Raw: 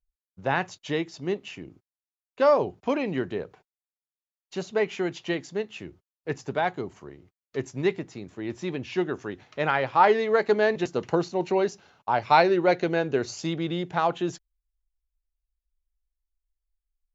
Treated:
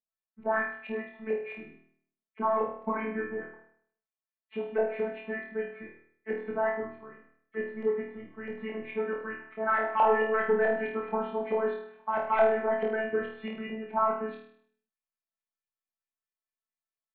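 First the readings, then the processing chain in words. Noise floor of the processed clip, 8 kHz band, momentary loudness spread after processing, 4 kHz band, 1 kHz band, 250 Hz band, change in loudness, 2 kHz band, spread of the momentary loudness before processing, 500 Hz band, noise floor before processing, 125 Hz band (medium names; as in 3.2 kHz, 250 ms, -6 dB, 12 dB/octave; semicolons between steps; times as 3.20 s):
under -85 dBFS, no reading, 16 LU, under -10 dB, -4.5 dB, -8.0 dB, -4.5 dB, -3.0 dB, 17 LU, -4.0 dB, under -85 dBFS, under -15 dB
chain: knee-point frequency compression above 1.7 kHz 1.5:1; high-pass 120 Hz 24 dB/octave; peaking EQ 550 Hz -13 dB 0.39 oct; robot voice 219 Hz; saturation -18.5 dBFS, distortion -13 dB; distance through air 420 m; LFO low-pass saw up 4.6 Hz 630–2700 Hz; on a send: flutter echo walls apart 4.4 m, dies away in 0.61 s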